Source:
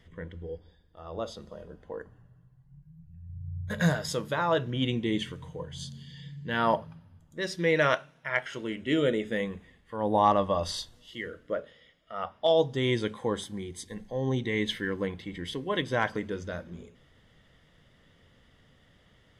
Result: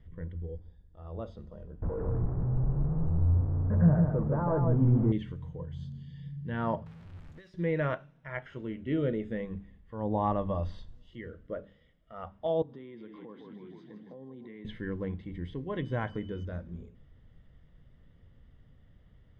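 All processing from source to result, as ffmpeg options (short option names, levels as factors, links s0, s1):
-filter_complex "[0:a]asettb=1/sr,asplit=3[s0][s1][s2];[s0]atrim=end=1.824[s3];[s1]atrim=start=1.82:end=5.12,asetpts=PTS-STARTPTS,afade=t=in:d=0.004:c=qsin,afade=t=out:st=3.296:d=0.004:c=qsin,aeval=exprs='val(0)+0.5*0.0422*sgn(val(0))':c=same,lowpass=f=1200:w=0.5412,lowpass=f=1200:w=1.3066,aecho=1:1:151:0.631,atrim=end_sample=145530[s4];[s2]atrim=start=5.116[s5];[s3][s4]acrossfade=d=0.004:c1=hsin:c2=qsin[s6];[s6][s5]acrossfade=d=0.004:c1=qsin:c2=hsin,asettb=1/sr,asplit=3[s7][s8][s9];[s7]atrim=end=6.864[s10];[s8]atrim=start=6.86:end=7.54,asetpts=PTS-STARTPTS,afade=t=in:d=0.004:c=qsin,afade=t=out:st=0.676:d=0.004:c=qsin,aeval=exprs='val(0)+0.5*0.0141*sgn(val(0))':c=same,tiltshelf=f=1200:g=-8,acompressor=threshold=0.01:ratio=16:attack=3.2:release=140:knee=1:detection=peak[s11];[s9]atrim=start=7.536[s12];[s10][s11]acrossfade=d=0.004:c1=hsin:c2=qsin[s13];[s13][s12]acrossfade=d=0.004:c1=qsin:c2=hsin,asettb=1/sr,asplit=3[s14][s15][s16];[s14]atrim=end=12.624[s17];[s15]atrim=start=12.62:end=14.65,asetpts=PTS-STARTPTS,afade=t=in:d=0.004:c=qsin,afade=t=out:st=2.026:d=0.004:c=qsin,asplit=9[s18][s19][s20][s21][s22][s23][s24][s25][s26];[s19]adelay=156,afreqshift=-33,volume=0.299[s27];[s20]adelay=312,afreqshift=-66,volume=0.188[s28];[s21]adelay=468,afreqshift=-99,volume=0.119[s29];[s22]adelay=624,afreqshift=-132,volume=0.075[s30];[s23]adelay=780,afreqshift=-165,volume=0.0468[s31];[s24]adelay=936,afreqshift=-198,volume=0.0295[s32];[s25]adelay=1092,afreqshift=-231,volume=0.0186[s33];[s26]adelay=1248,afreqshift=-264,volume=0.0117[s34];[s18][s27][s28][s29][s30][s31][s32][s33][s34]amix=inputs=9:normalize=0,atrim=end_sample=89523,acompressor=threshold=0.0141:ratio=12:attack=3.2:release=140:knee=1:detection=peak,highpass=f=190:w=0.5412,highpass=f=190:w=1.3066,equalizer=f=750:t=q:w=4:g=-3,equalizer=f=1100:t=q:w=4:g=4,equalizer=f=3100:t=q:w=4:g=-4,lowpass=f=4200:w=0.5412,lowpass=f=4200:w=1.3066[s35];[s16]atrim=start=14.646[s36];[s17][s35]acrossfade=d=0.004:c1=hsin:c2=qsin[s37];[s37][s36]acrossfade=d=0.004:c1=qsin:c2=hsin,asettb=1/sr,asplit=3[s38][s39][s40];[s38]atrim=end=15.784[s41];[s39]atrim=start=15.78:end=16.45,asetpts=PTS-STARTPTS,afade=t=in:d=0.004:c=qsin,afade=t=out:st=0.666:d=0.004:c=qsin,highshelf=f=5500:g=7.5,aeval=exprs='val(0)+0.00631*sin(2*PI*3000*n/s)':c=same[s42];[s40]atrim=start=16.446[s43];[s41][s42]acrossfade=d=0.004:c1=hsin:c2=qsin[s44];[s44][s43]acrossfade=d=0.004:c1=qsin:c2=hsin,bandreject=f=99.23:t=h:w=4,bandreject=f=198.46:t=h:w=4,bandreject=f=297.69:t=h:w=4,acrossover=split=3300[s45][s46];[s46]acompressor=threshold=0.00224:ratio=4:attack=1:release=60[s47];[s45][s47]amix=inputs=2:normalize=0,aemphasis=mode=reproduction:type=riaa,volume=0.376"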